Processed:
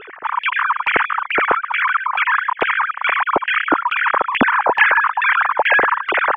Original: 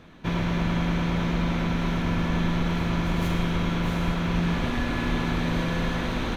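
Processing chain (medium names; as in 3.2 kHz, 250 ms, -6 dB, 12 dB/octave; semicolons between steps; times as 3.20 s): formants replaced by sine waves; LFO low-pass saw down 2.3 Hz 740–2500 Hz; trim +4.5 dB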